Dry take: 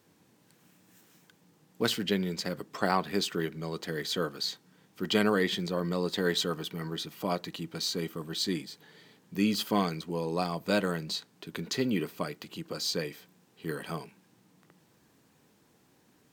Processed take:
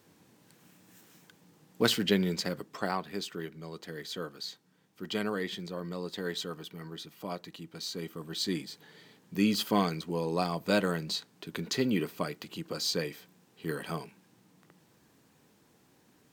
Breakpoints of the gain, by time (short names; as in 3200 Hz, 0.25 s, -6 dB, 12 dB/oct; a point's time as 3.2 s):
2.32 s +2.5 dB
3.06 s -7 dB
7.74 s -7 dB
8.69 s +0.5 dB